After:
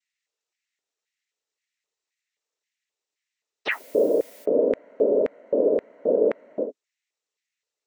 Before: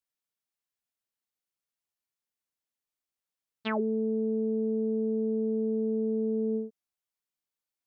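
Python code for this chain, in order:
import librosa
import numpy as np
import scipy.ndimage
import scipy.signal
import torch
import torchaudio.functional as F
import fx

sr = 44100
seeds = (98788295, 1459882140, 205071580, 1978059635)

y = fx.noise_vocoder(x, sr, seeds[0], bands=12)
y = fx.dmg_noise_colour(y, sr, seeds[1], colour='blue', level_db=-55.0, at=(3.7, 4.44), fade=0.02)
y = fx.filter_lfo_highpass(y, sr, shape='square', hz=1.9, low_hz=440.0, high_hz=2000.0, q=3.6)
y = y * 10.0 ** (4.5 / 20.0)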